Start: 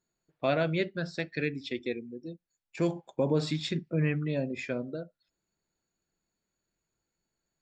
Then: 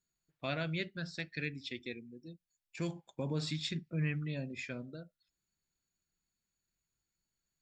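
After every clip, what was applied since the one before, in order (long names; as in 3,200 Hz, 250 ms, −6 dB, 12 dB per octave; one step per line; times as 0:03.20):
parametric band 520 Hz −11.5 dB 2.6 octaves
level −1.5 dB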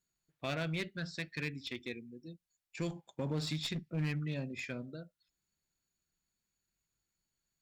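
asymmetric clip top −36 dBFS, bottom −28 dBFS
level +1 dB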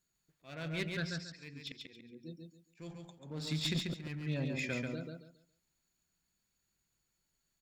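volume swells 531 ms
repeating echo 139 ms, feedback 26%, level −4 dB
level +3 dB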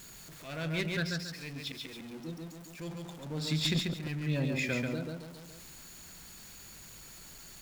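converter with a step at zero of −48 dBFS
every ending faded ahead of time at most 190 dB per second
level +4 dB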